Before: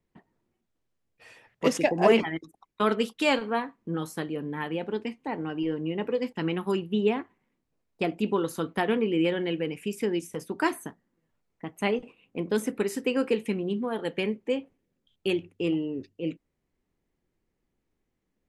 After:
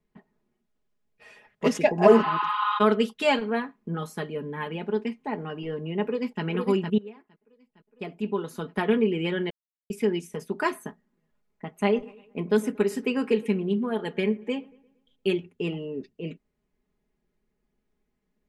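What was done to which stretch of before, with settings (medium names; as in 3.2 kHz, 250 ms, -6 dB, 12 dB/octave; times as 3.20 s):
2.13–2.76 s: spectral replace 830–4900 Hz
6.03–6.43 s: echo throw 460 ms, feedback 50%, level -4 dB
6.98–8.90 s: fade in quadratic, from -22 dB
9.50–9.90 s: mute
11.71–15.37 s: feedback echo behind a low-pass 116 ms, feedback 44%, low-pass 2 kHz, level -21.5 dB
whole clip: treble shelf 4.7 kHz -6.5 dB; comb 4.8 ms, depth 71%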